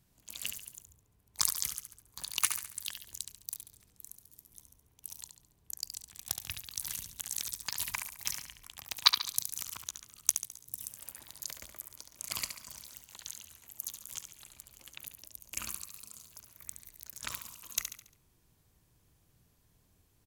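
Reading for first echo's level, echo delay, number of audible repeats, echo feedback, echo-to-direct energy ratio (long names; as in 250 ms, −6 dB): −8.0 dB, 70 ms, 4, 43%, −7.0 dB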